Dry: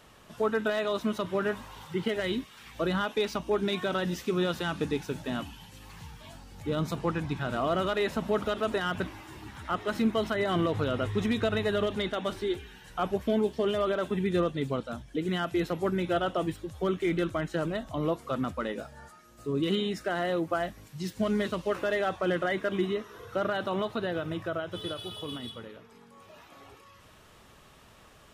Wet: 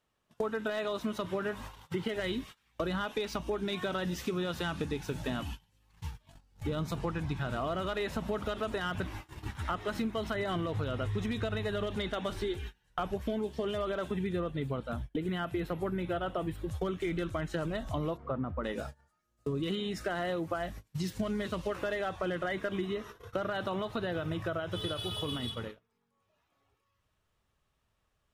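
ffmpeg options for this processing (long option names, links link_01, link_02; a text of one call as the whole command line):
ffmpeg -i in.wav -filter_complex "[0:a]asettb=1/sr,asplit=3[link_01][link_02][link_03];[link_01]atrim=end=14.324[link_04];[link_02]atrim=start=14.32:end=16.71,asetpts=PTS-STARTPTS,afade=type=in:duration=0.004:curve=qsin,afade=type=out:start_time=2.386:duration=0.004:curve=qsin,equalizer=frequency=6000:width_type=o:width=1.2:gain=-9.5[link_05];[link_03]atrim=start=16.706[link_06];[link_04][link_05]acrossfade=duration=0.004:curve1=hsin:curve2=qsin[link_07];[link_07][link_06]acrossfade=duration=0.004:curve1=qsin:curve2=hsin,asplit=3[link_08][link_09][link_10];[link_08]afade=type=out:start_time=18.16:duration=0.02[link_11];[link_09]lowpass=1200,afade=type=in:start_time=18.16:duration=0.02,afade=type=out:start_time=18.63:duration=0.02[link_12];[link_10]afade=type=in:start_time=18.63:duration=0.02[link_13];[link_11][link_12][link_13]amix=inputs=3:normalize=0,agate=range=-29dB:threshold=-43dB:ratio=16:detection=peak,asubboost=boost=2:cutoff=140,acompressor=threshold=-36dB:ratio=6,volume=5dB" out.wav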